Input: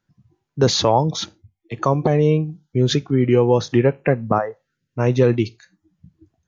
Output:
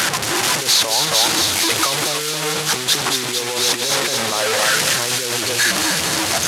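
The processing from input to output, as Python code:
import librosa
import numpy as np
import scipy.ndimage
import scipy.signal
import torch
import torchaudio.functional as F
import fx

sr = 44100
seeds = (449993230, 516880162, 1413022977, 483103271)

y = fx.delta_mod(x, sr, bps=64000, step_db=-14.0)
y = y + 10.0 ** (-8.0 / 20.0) * np.pad(y, (int(277 * sr / 1000.0), 0))[:len(y)]
y = fx.over_compress(y, sr, threshold_db=-19.0, ratio=-1.0)
y = fx.highpass(y, sr, hz=980.0, slope=6)
y = fx.echo_wet_highpass(y, sr, ms=225, feedback_pct=78, hz=3000.0, wet_db=-3.5)
y = y * librosa.db_to_amplitude(4.0)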